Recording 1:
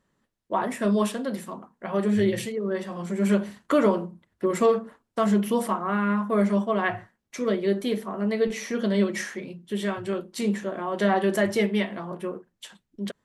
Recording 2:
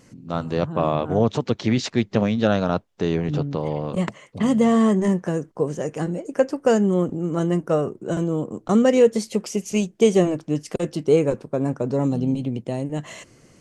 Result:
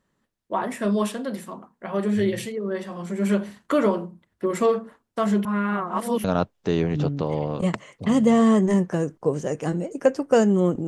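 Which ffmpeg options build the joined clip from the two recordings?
-filter_complex "[0:a]apad=whole_dur=10.87,atrim=end=10.87,asplit=2[s0][s1];[s0]atrim=end=5.452[s2];[s1]atrim=start=5.448:end=6.242,asetpts=PTS-STARTPTS,areverse[s3];[1:a]atrim=start=2.578:end=7.21[s4];[s2][s3]acrossfade=d=0.004:c1=hsin:c2=hsin[s5];[s5][s4]acrossfade=d=0.004:c1=hsin:c2=hsin"

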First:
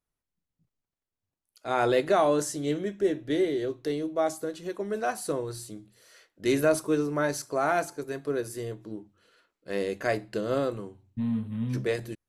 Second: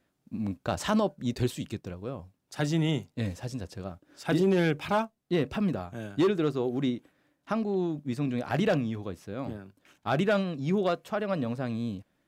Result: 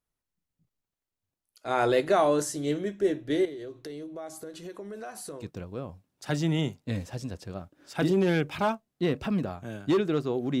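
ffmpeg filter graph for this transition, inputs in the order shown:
-filter_complex "[0:a]asettb=1/sr,asplit=3[s0][s1][s2];[s0]atrim=end=3.454[s3];[s1]atrim=start=3.45:end=5.5,asetpts=PTS-STARTPTS,afade=t=in:d=0.004:c=qsin,afade=t=out:st=2.046:d=0.004:c=qsin,acompressor=threshold=0.0141:ratio=5:attack=3.2:release=140:knee=1:detection=peak[s4];[s2]atrim=start=5.496[s5];[s3][s4]acrossfade=d=0.004:c1=hsin:c2=qsin[s6];[s6][s5]acrossfade=d=0.004:c1=qsin:c2=hsin,apad=whole_dur=10.6,atrim=end=10.6,atrim=end=5.5,asetpts=PTS-STARTPTS[s7];[1:a]atrim=start=1.66:end=6.9,asetpts=PTS-STARTPTS[s8];[s7][s8]acrossfade=d=0.14:c1=tri:c2=tri"

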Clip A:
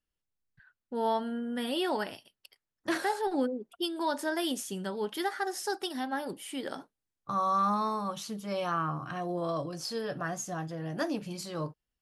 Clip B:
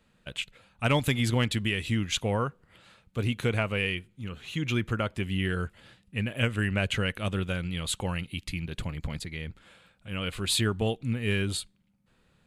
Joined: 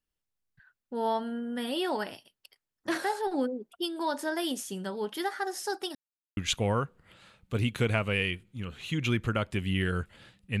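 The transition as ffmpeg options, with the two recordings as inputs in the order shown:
-filter_complex "[0:a]apad=whole_dur=10.6,atrim=end=10.6,asplit=2[s0][s1];[s0]atrim=end=5.95,asetpts=PTS-STARTPTS,afade=t=out:st=5.946:d=0.004:c=hsin[s2];[s1]atrim=start=5.95:end=6.37,asetpts=PTS-STARTPTS,volume=0[s3];[1:a]atrim=start=2.01:end=6.24,asetpts=PTS-STARTPTS,afade=t=in:d=0.004:c=hsin[s4];[s2][s3][s4]concat=n=3:v=0:a=1"

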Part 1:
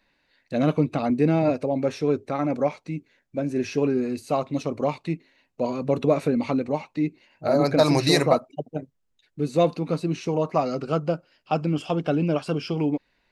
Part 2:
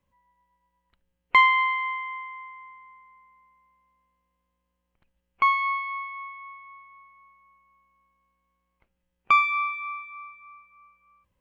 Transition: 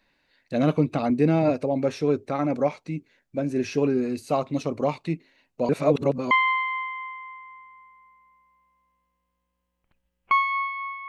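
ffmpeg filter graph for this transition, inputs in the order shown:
-filter_complex "[0:a]apad=whole_dur=11.08,atrim=end=11.08,asplit=2[s0][s1];[s0]atrim=end=5.692[s2];[s1]atrim=start=5.688:end=6.312,asetpts=PTS-STARTPTS,areverse[s3];[1:a]atrim=start=1.418:end=6.19[s4];[s2][s3]acrossfade=d=0.004:c1=hsin:c2=hsin[s5];[s5][s4]acrossfade=d=0.004:c1=hsin:c2=hsin"

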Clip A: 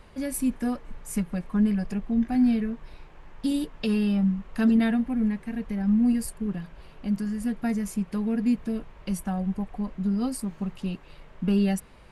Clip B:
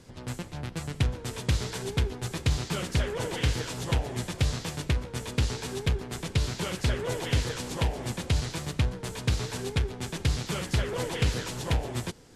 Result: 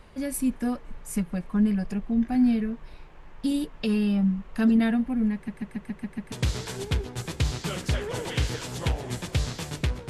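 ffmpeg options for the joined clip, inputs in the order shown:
-filter_complex "[0:a]apad=whole_dur=10.09,atrim=end=10.09,asplit=7[s0][s1][s2][s3][s4][s5][s6];[s0]atrim=end=5.482[s7];[s1]atrim=start=5.338:end=5.482[s8];[s2]atrim=start=5.338:end=5.482[s9];[s3]atrim=start=5.338:end=5.482[s10];[s4]atrim=start=5.338:end=5.482[s11];[s5]atrim=start=5.338:end=5.482[s12];[s6]atrim=start=5.338:end=5.482[s13];[1:a]atrim=start=1.378:end=5.15[s14];[s7][s8]acrossfade=d=0.004:c1=hsin:c2=hsin[s15];[s15][s9]acrossfade=d=0.004:c1=hsin:c2=hsin[s16];[s16][s10]acrossfade=d=0.004:c1=hsin:c2=hsin[s17];[s17][s11]acrossfade=d=0.004:c1=hsin:c2=hsin[s18];[s18][s12]acrossfade=d=0.004:c1=hsin:c2=hsin[s19];[s19][s13]acrossfade=d=0.004:c1=hsin:c2=hsin[s20];[s20][s14]acrossfade=d=0.004:c1=hsin:c2=hsin"

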